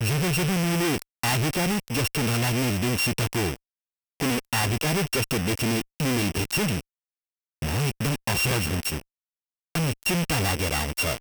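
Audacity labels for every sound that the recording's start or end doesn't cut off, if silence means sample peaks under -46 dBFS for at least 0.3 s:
4.200000	6.810000	sound
7.620000	9.010000	sound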